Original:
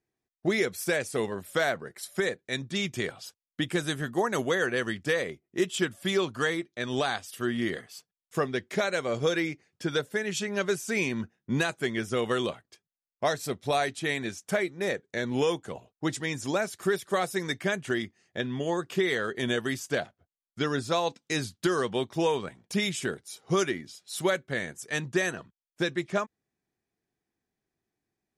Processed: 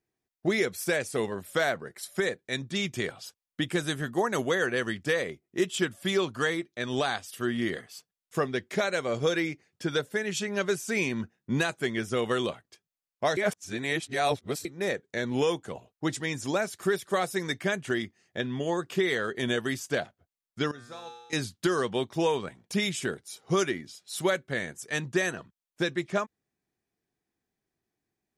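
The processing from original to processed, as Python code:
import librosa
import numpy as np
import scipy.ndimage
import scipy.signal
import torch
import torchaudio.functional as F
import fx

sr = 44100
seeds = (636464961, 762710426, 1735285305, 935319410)

y = fx.comb_fb(x, sr, f0_hz=120.0, decay_s=1.2, harmonics='all', damping=0.0, mix_pct=90, at=(20.71, 21.33))
y = fx.edit(y, sr, fx.reverse_span(start_s=13.37, length_s=1.28), tone=tone)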